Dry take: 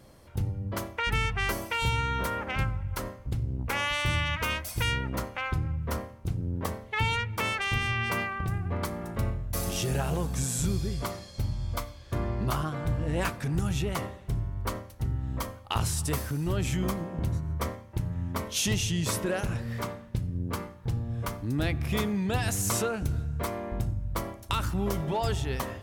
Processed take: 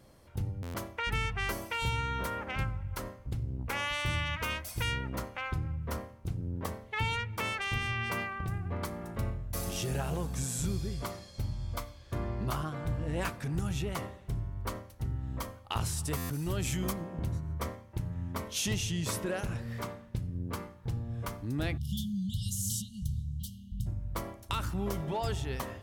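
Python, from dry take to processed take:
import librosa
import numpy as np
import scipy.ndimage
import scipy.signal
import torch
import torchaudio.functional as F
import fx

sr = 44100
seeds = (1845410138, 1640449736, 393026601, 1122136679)

y = fx.peak_eq(x, sr, hz=15000.0, db=7.5, octaves=2.1, at=(16.33, 16.93))
y = fx.spec_erase(y, sr, start_s=21.78, length_s=2.09, low_hz=230.0, high_hz=2800.0)
y = fx.buffer_glitch(y, sr, at_s=(0.62, 16.17), block=512, repeats=10)
y = F.gain(torch.from_numpy(y), -4.5).numpy()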